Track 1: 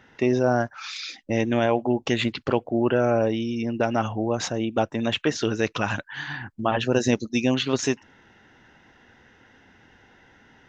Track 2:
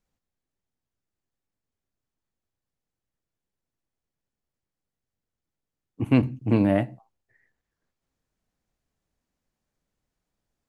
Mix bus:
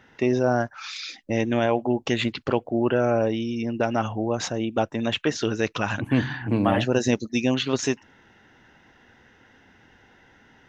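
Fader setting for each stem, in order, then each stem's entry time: -0.5 dB, -2.5 dB; 0.00 s, 0.00 s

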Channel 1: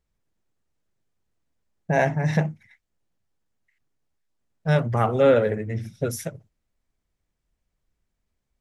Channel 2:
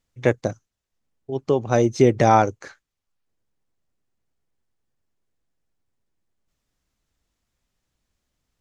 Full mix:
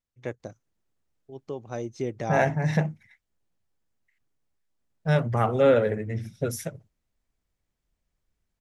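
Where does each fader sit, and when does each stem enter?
-2.0 dB, -15.0 dB; 0.40 s, 0.00 s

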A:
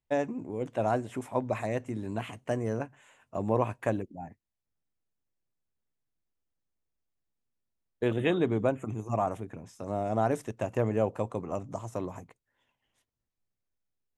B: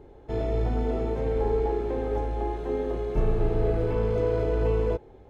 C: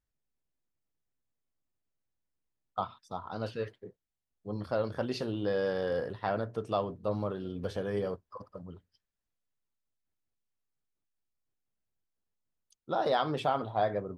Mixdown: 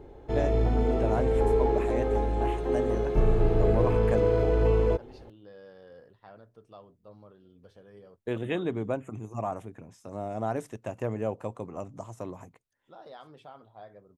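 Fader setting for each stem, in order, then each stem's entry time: -3.5 dB, +1.5 dB, -19.0 dB; 0.25 s, 0.00 s, 0.00 s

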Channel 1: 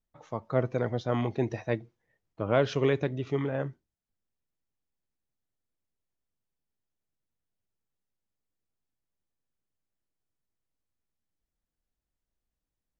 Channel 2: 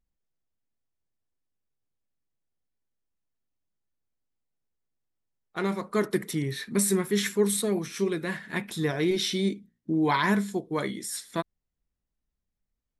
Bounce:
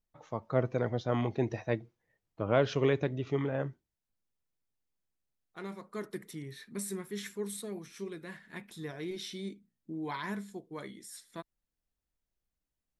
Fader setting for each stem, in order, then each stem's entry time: -2.0 dB, -13.5 dB; 0.00 s, 0.00 s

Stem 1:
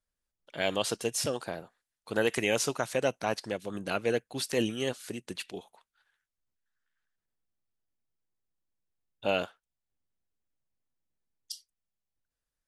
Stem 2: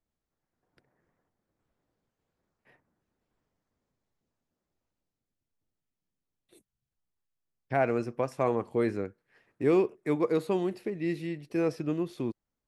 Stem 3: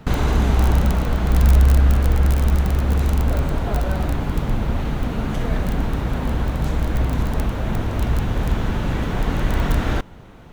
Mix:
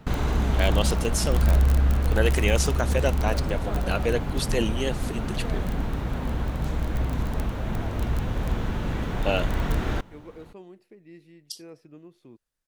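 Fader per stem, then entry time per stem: +3.0 dB, -17.0 dB, -6.0 dB; 0.00 s, 0.05 s, 0.00 s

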